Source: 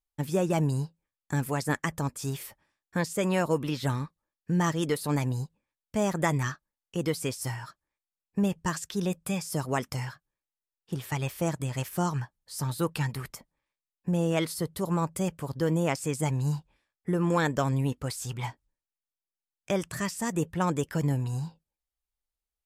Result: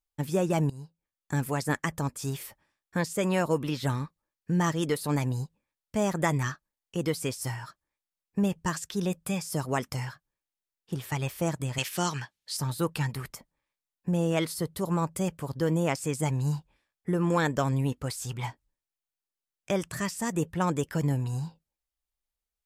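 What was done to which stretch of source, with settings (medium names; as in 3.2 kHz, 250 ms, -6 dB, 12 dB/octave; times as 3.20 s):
0.70–1.36 s: fade in, from -19 dB
11.78–12.57 s: frequency weighting D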